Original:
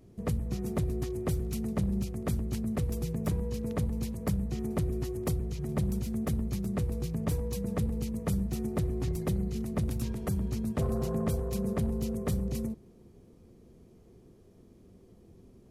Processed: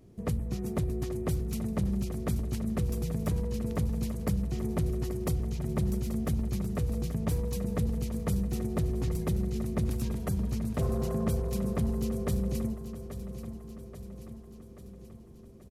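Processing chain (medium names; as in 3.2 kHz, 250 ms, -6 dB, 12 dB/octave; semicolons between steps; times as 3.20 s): feedback delay 833 ms, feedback 58%, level -11.5 dB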